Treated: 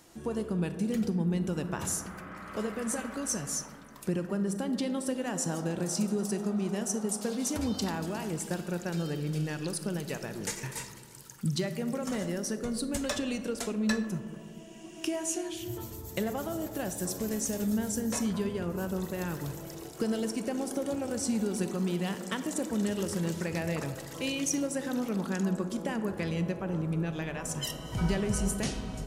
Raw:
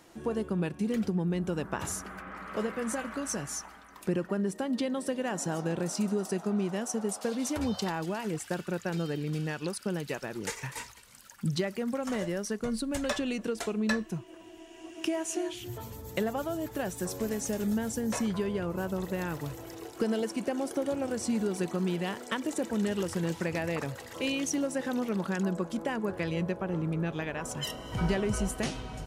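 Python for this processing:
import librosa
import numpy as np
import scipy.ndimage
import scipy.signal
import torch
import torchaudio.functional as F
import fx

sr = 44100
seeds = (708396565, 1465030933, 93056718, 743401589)

y = fx.bass_treble(x, sr, bass_db=4, treble_db=7)
y = fx.rev_freeverb(y, sr, rt60_s=2.3, hf_ratio=0.25, predelay_ms=0, drr_db=9.0)
y = F.gain(torch.from_numpy(y), -3.0).numpy()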